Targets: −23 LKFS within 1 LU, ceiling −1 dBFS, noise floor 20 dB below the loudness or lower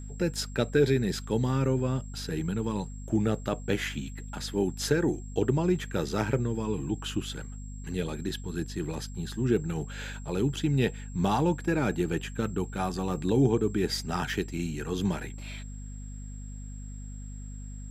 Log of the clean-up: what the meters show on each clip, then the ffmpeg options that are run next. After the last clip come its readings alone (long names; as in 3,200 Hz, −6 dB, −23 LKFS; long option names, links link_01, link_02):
mains hum 50 Hz; hum harmonics up to 250 Hz; level of the hum −37 dBFS; interfering tone 7,600 Hz; level of the tone −52 dBFS; integrated loudness −29.5 LKFS; sample peak −11.0 dBFS; target loudness −23.0 LKFS
→ -af "bandreject=frequency=50:width_type=h:width=6,bandreject=frequency=100:width_type=h:width=6,bandreject=frequency=150:width_type=h:width=6,bandreject=frequency=200:width_type=h:width=6,bandreject=frequency=250:width_type=h:width=6"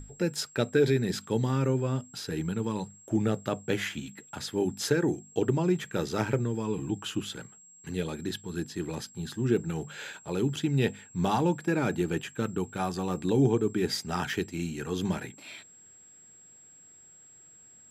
mains hum none found; interfering tone 7,600 Hz; level of the tone −52 dBFS
→ -af "bandreject=frequency=7600:width=30"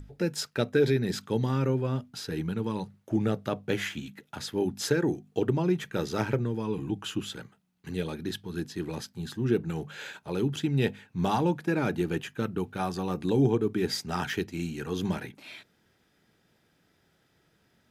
interfering tone none found; integrated loudness −30.0 LKFS; sample peak −11.5 dBFS; target loudness −23.0 LKFS
→ -af "volume=7dB"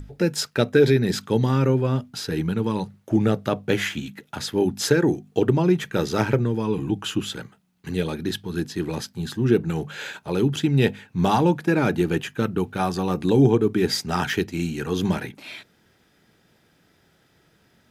integrated loudness −23.0 LKFS; sample peak −4.5 dBFS; background noise floor −62 dBFS